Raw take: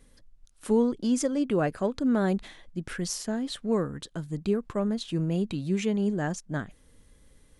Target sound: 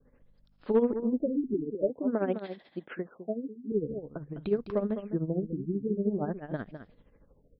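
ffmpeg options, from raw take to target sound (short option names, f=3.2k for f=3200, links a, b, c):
-filter_complex "[0:a]tremolo=f=13:d=0.76,aeval=exprs='val(0)+0.000631*(sin(2*PI*50*n/s)+sin(2*PI*2*50*n/s)/2+sin(2*PI*3*50*n/s)/3+sin(2*PI*4*50*n/s)/4+sin(2*PI*5*50*n/s)/5)':c=same,asettb=1/sr,asplit=3[a][b][c];[a]atrim=end=1.544[d];[b]atrim=start=1.54:end=3.72,asetpts=PTS-STARTPTS,afade=t=in:d=0.004:c=qsin,afade=t=out:st=2.176:d=0.004:c=qsin,highpass=230[e];[c]atrim=start=3.716[f];[d][e]acrossfade=d=0.004:c1=hsin:c2=qsin[g];[g][f]acrossfade=d=0.004:c1=qsin:c2=hsin,asoftclip=type=hard:threshold=-19dB,equalizer=f=570:t=o:w=2.1:g=10,aecho=1:1:206:0.316,adynamicequalizer=threshold=0.00501:dfrequency=890:dqfactor=0.98:tfrequency=890:tqfactor=0.98:attack=5:release=100:ratio=0.375:range=2.5:mode=cutabove:tftype=bell,afftfilt=real='re*lt(b*sr/1024,420*pow(5600/420,0.5+0.5*sin(2*PI*0.48*pts/sr)))':imag='im*lt(b*sr/1024,420*pow(5600/420,0.5+0.5*sin(2*PI*0.48*pts/sr)))':win_size=1024:overlap=0.75,volume=-4dB"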